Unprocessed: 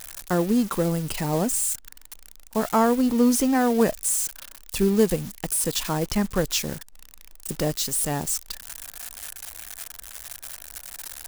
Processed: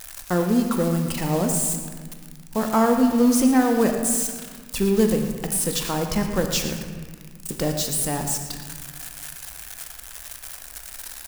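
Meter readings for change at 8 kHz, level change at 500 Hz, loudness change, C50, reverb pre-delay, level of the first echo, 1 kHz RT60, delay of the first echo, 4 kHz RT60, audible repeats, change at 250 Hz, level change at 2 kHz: +1.0 dB, +1.0 dB, +1.5 dB, 5.0 dB, 4 ms, −13.0 dB, 1.7 s, 114 ms, 1.1 s, 1, +2.5 dB, +1.5 dB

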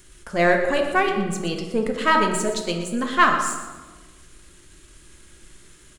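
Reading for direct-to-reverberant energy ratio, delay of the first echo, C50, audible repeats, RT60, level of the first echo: 2.5 dB, 120 ms, 5.0 dB, 1, 1.3 s, −12.5 dB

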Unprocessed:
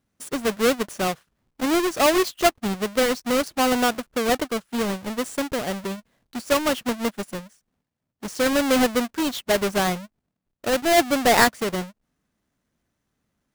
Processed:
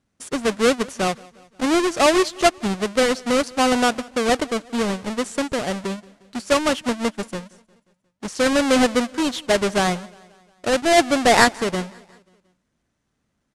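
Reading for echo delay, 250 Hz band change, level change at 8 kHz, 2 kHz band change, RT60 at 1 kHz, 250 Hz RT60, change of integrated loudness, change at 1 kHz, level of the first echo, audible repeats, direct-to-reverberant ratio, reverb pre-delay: 178 ms, +2.5 dB, +2.0 dB, +2.5 dB, no reverb audible, no reverb audible, +2.5 dB, +2.5 dB, −24.0 dB, 3, no reverb audible, no reverb audible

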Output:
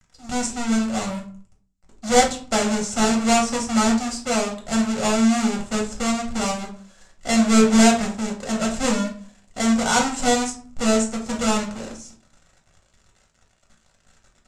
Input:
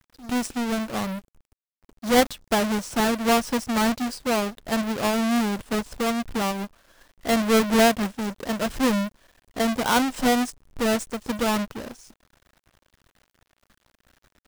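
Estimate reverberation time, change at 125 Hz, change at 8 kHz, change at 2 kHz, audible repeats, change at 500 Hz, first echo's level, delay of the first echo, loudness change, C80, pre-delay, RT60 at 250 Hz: 0.45 s, +3.0 dB, +8.0 dB, +1.0 dB, no echo audible, +1.0 dB, no echo audible, no echo audible, +3.0 dB, 14.5 dB, 5 ms, 0.60 s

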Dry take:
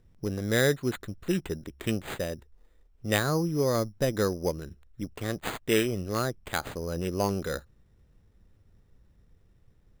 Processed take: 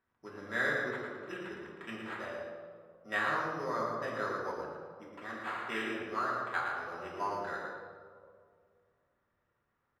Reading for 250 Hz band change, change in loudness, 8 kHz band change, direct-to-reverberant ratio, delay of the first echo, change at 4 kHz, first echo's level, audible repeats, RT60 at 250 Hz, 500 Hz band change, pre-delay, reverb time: −13.0 dB, −7.0 dB, −20.0 dB, −6.0 dB, 113 ms, −11.5 dB, −5.0 dB, 1, 2.1 s, −10.0 dB, 3 ms, 2.1 s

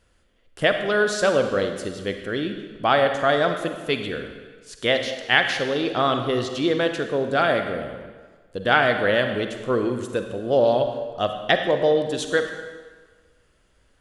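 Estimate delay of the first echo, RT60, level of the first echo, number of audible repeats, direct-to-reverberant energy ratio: no echo audible, 1.5 s, no echo audible, no echo audible, 6.0 dB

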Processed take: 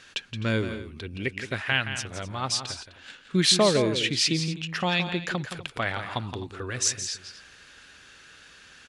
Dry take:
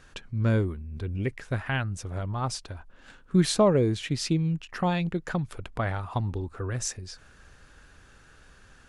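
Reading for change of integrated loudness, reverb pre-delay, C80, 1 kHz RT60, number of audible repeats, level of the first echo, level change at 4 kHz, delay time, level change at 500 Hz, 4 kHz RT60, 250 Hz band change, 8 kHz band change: +2.0 dB, no reverb audible, no reverb audible, no reverb audible, 2, −9.5 dB, +11.0 dB, 170 ms, 0.0 dB, no reverb audible, −1.5 dB, +7.5 dB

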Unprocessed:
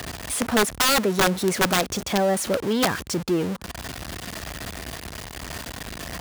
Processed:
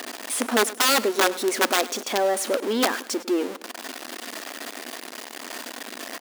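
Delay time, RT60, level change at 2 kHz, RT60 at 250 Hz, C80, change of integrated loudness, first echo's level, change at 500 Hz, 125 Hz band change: 103 ms, no reverb audible, 0.0 dB, no reverb audible, no reverb audible, −0.5 dB, −18.0 dB, 0.0 dB, below −15 dB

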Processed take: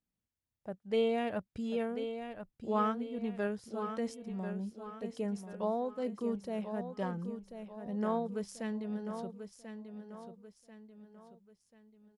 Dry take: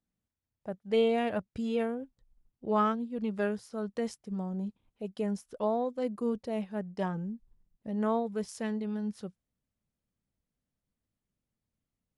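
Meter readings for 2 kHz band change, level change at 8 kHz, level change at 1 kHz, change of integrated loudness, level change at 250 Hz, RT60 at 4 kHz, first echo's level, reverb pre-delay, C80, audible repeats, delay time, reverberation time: −3.5 dB, −3.5 dB, −3.5 dB, −4.0 dB, −3.5 dB, no reverb audible, −9.0 dB, no reverb audible, no reverb audible, 4, 1,039 ms, no reverb audible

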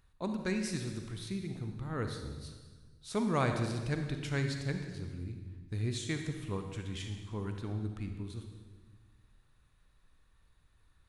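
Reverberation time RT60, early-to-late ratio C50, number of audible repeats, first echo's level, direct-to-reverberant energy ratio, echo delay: 1.4 s, 5.5 dB, no echo audible, no echo audible, 5.0 dB, no echo audible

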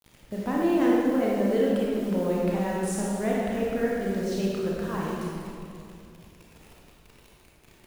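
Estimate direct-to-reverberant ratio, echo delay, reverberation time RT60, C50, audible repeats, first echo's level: −5.0 dB, no echo audible, 2.5 s, −2.5 dB, no echo audible, no echo audible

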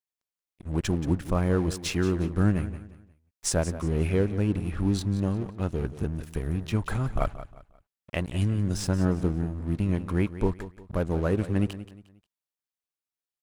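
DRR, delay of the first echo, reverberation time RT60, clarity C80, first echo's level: no reverb audible, 178 ms, no reverb audible, no reverb audible, −14.0 dB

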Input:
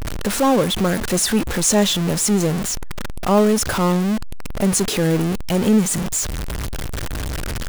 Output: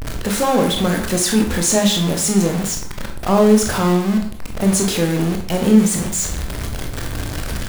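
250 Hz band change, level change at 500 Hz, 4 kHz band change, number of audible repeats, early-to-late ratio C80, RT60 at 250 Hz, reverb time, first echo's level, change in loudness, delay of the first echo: +2.5 dB, +1.5 dB, +1.5 dB, no echo audible, 11.0 dB, 0.60 s, 0.60 s, no echo audible, +1.5 dB, no echo audible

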